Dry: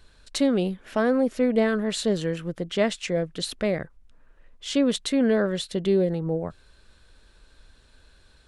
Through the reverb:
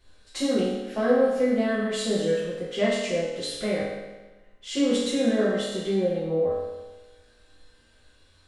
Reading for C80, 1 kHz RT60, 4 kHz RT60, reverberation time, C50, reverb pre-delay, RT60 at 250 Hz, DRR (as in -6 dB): 2.5 dB, 1.2 s, 1.1 s, 1.2 s, -0.5 dB, 4 ms, 1.2 s, -10.5 dB